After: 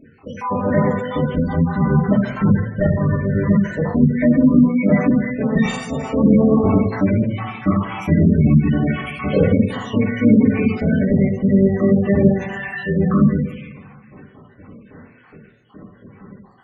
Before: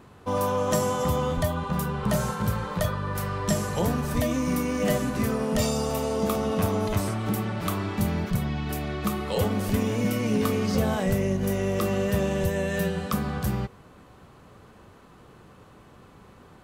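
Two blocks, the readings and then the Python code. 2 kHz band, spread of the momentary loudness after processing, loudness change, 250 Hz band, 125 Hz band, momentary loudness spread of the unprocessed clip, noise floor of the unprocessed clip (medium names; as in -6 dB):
+6.5 dB, 9 LU, +9.5 dB, +12.5 dB, +9.5 dB, 4 LU, -52 dBFS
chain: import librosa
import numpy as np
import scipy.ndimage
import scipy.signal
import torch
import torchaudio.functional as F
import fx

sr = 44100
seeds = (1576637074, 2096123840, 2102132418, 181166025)

y = fx.spec_dropout(x, sr, seeds[0], share_pct=69)
y = fx.high_shelf(y, sr, hz=3500.0, db=-2.5)
y = fx.notch(y, sr, hz=370.0, q=12.0)
y = fx.volume_shaper(y, sr, bpm=112, per_beat=1, depth_db=-13, release_ms=61.0, shape='fast start')
y = scipy.signal.sosfilt(scipy.signal.butter(2, 9200.0, 'lowpass', fs=sr, output='sos'), y)
y = fx.fold_sine(y, sr, drive_db=6, ceiling_db=-13.0)
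y = fx.echo_feedback(y, sr, ms=119, feedback_pct=48, wet_db=-20.5)
y = fx.rev_double_slope(y, sr, seeds[1], early_s=0.75, late_s=2.3, knee_db=-18, drr_db=-6.5)
y = fx.rider(y, sr, range_db=5, speed_s=2.0)
y = fx.graphic_eq(y, sr, hz=(125, 250, 500, 2000), db=(11, 11, 6, 10))
y = fx.spec_gate(y, sr, threshold_db=-25, keep='strong')
y = y * librosa.db_to_amplitude(-11.5)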